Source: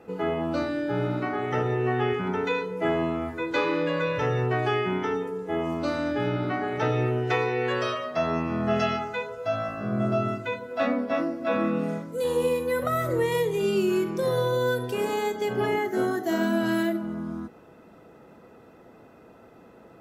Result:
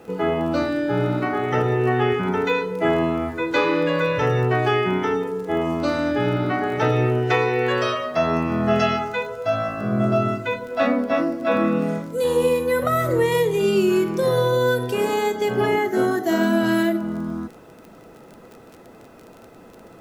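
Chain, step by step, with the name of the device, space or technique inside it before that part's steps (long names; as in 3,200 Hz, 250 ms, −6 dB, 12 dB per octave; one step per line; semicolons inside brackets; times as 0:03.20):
vinyl LP (surface crackle 23 per second −38 dBFS; pink noise bed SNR 39 dB)
level +5.5 dB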